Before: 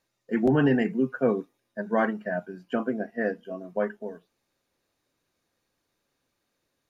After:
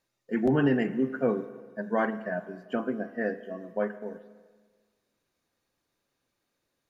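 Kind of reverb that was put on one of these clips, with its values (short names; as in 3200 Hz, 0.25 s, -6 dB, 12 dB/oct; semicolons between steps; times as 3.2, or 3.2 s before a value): spring tank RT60 1.5 s, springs 38/42/48 ms, chirp 55 ms, DRR 12.5 dB; gain -2.5 dB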